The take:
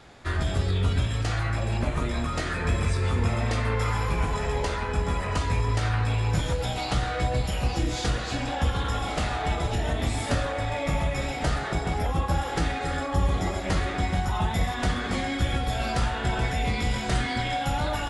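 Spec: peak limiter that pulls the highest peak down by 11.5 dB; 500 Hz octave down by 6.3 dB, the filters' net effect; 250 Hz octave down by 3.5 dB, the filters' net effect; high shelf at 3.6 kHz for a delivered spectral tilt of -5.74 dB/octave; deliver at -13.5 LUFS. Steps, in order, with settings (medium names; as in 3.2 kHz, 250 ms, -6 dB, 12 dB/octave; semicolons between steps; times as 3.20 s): peaking EQ 250 Hz -3 dB; peaking EQ 500 Hz -7 dB; treble shelf 3.6 kHz -8.5 dB; trim +20.5 dB; peak limiter -4.5 dBFS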